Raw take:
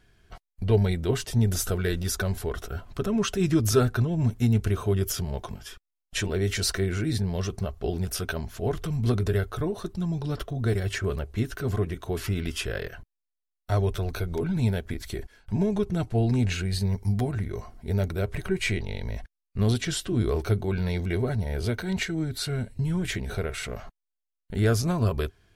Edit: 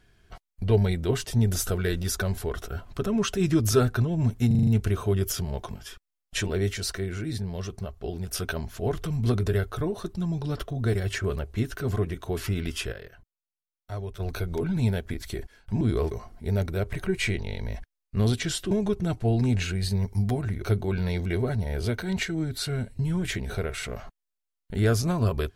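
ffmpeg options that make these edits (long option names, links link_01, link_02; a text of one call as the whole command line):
ffmpeg -i in.wav -filter_complex "[0:a]asplit=14[link_01][link_02][link_03][link_04][link_05][link_06][link_07][link_08][link_09][link_10][link_11][link_12][link_13][link_14];[link_01]atrim=end=4.512[link_15];[link_02]atrim=start=4.468:end=4.512[link_16];[link_03]atrim=start=4.468:end=4.512[link_17];[link_04]atrim=start=4.468:end=4.512[link_18];[link_05]atrim=start=4.468:end=4.512[link_19];[link_06]atrim=start=4.468:end=6.492[link_20];[link_07]atrim=start=6.488:end=8.132,asetpts=PTS-STARTPTS,volume=-4.5dB[link_21];[link_08]atrim=start=8.128:end=12.73,asetpts=PTS-STARTPTS,afade=type=out:start_time=4.142:duration=0.46:curve=log:silence=0.316228[link_22];[link_09]atrim=start=12.73:end=14,asetpts=PTS-STARTPTS,volume=-10dB[link_23];[link_10]atrim=start=14:end=15.612,asetpts=PTS-STARTPTS,afade=type=in:duration=0.46:curve=log:silence=0.316228[link_24];[link_11]atrim=start=20.128:end=20.432[link_25];[link_12]atrim=start=17.528:end=20.132[link_26];[link_13]atrim=start=15.608:end=17.532[link_27];[link_14]atrim=start=20.428[link_28];[link_15][link_16]acrossfade=duration=0.004:curve1=hsin:curve2=hsin[link_29];[link_29][link_17]acrossfade=duration=0.004:curve1=hsin:curve2=hsin[link_30];[link_30][link_18]acrossfade=duration=0.004:curve1=hsin:curve2=hsin[link_31];[link_31][link_19]acrossfade=duration=0.004:curve1=hsin:curve2=hsin[link_32];[link_32][link_20]acrossfade=duration=0.004:curve1=hsin:curve2=hsin[link_33];[link_33][link_21]acrossfade=duration=0.004:curve1=hsin:curve2=hsin[link_34];[link_22][link_23][link_24]concat=n=3:v=0:a=1[link_35];[link_34][link_35]acrossfade=duration=0.004:curve1=hsin:curve2=hsin[link_36];[link_36][link_25]acrossfade=duration=0.004:curve1=hsin:curve2=hsin[link_37];[link_37][link_26]acrossfade=duration=0.004:curve1=hsin:curve2=hsin[link_38];[link_38][link_27]acrossfade=duration=0.004:curve1=hsin:curve2=hsin[link_39];[link_39][link_28]acrossfade=duration=0.004:curve1=hsin:curve2=hsin" out.wav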